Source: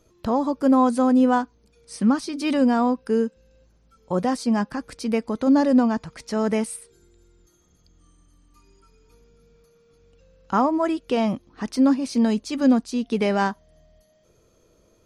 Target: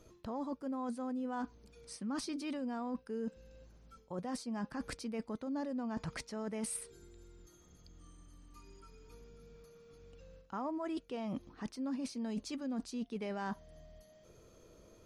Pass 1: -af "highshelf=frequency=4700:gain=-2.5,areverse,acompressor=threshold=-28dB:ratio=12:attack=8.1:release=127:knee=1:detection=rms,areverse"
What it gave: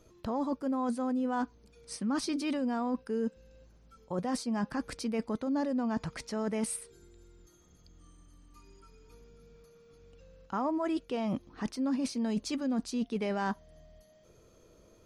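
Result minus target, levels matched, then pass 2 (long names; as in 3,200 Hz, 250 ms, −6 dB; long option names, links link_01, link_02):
downward compressor: peak gain reduction −7.5 dB
-af "highshelf=frequency=4700:gain=-2.5,areverse,acompressor=threshold=-36dB:ratio=12:attack=8.1:release=127:knee=1:detection=rms,areverse"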